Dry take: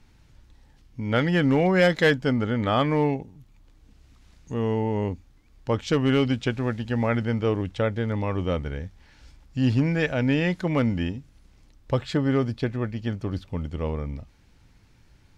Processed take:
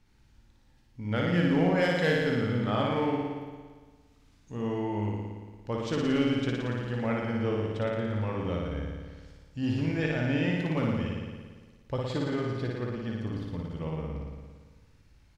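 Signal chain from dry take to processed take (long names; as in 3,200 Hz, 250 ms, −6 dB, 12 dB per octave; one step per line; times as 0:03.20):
double-tracking delay 18 ms −12 dB
on a send: flutter between parallel walls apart 9.8 metres, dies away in 1.5 s
on the sum: level −9 dB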